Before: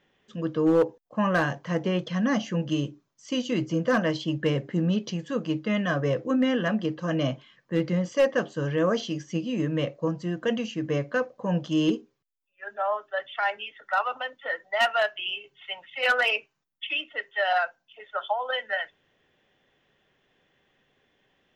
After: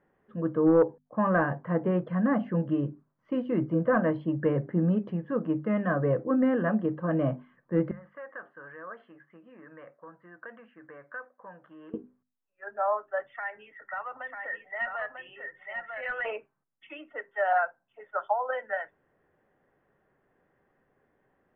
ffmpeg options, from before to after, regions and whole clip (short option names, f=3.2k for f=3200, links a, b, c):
-filter_complex "[0:a]asettb=1/sr,asplit=3[a][b][c];[a]atrim=end=7.914[d];[b]atrim=start=7.91:end=11.94,asetpts=PTS-STARTPTS,afade=t=in:d=0.004:c=qsin,afade=t=out:st=4.026:d=0.004:c=qsin,acompressor=threshold=-26dB:ratio=4:attack=3.2:release=140:knee=1:detection=peak,bandpass=f=1.6k:t=q:w=2.1[e];[c]atrim=start=11.936[f];[d][e]acrossfade=d=0.004:c1=hsin:c2=qsin[g];[g][f]acrossfade=d=0.004:c1=qsin:c2=hsin,asettb=1/sr,asplit=3[h][i][j];[h]atrim=end=13.304[k];[i]atrim=start=13.3:end=16.25,asetpts=PTS-STARTPTS,afade=t=in:d=0.004:c=qsin,afade=t=out:st=2.946:d=0.004:c=qsin,equalizer=f=1.9k:t=o:w=0.3:g=13.5,acrossover=split=180|3000[l][m][n];[m]acompressor=threshold=-41dB:ratio=2:attack=3.2:release=140:knee=2.83:detection=peak[o];[l][o][n]amix=inputs=3:normalize=0,aecho=1:1:945:0.562,atrim=end_sample=130095[p];[j]atrim=start=16.246[q];[k][p]acrossfade=d=0.004:c1=hsin:c2=qsin[r];[r][q]acrossfade=d=0.004:c1=qsin:c2=hsin,lowpass=f=1.6k:w=0.5412,lowpass=f=1.6k:w=1.3066,bandreject=f=50:t=h:w=6,bandreject=f=100:t=h:w=6,bandreject=f=150:t=h:w=6,bandreject=f=200:t=h:w=6,bandreject=f=250:t=h:w=6"